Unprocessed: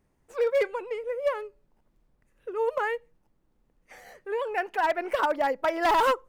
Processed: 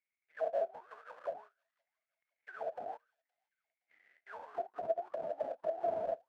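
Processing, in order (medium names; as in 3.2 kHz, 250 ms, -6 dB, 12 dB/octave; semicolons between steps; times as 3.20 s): sample-rate reducer 1.1 kHz, jitter 20%; auto-wah 670–2200 Hz, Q 16, down, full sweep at -23 dBFS; feedback echo behind a high-pass 518 ms, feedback 43%, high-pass 3.2 kHz, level -21 dB; trim +2 dB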